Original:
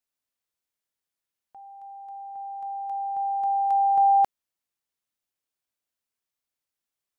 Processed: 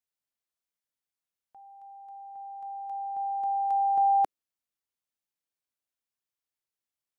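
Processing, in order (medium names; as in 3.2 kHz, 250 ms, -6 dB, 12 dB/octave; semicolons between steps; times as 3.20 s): dynamic bell 330 Hz, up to +6 dB, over -39 dBFS, Q 0.96; trim -5.5 dB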